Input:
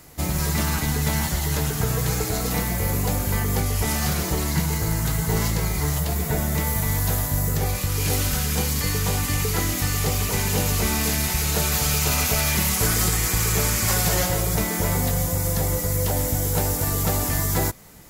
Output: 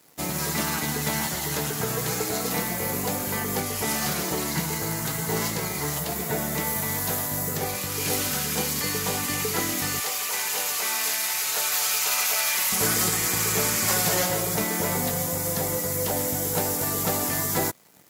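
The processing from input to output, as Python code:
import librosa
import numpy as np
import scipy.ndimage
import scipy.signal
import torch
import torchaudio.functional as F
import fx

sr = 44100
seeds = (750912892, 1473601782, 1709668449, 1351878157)

y = np.sign(x) * np.maximum(np.abs(x) - 10.0 ** (-47.5 / 20.0), 0.0)
y = fx.highpass(y, sr, hz=fx.steps((0.0, 200.0), (10.0, 790.0), (12.72, 180.0)), slope=12)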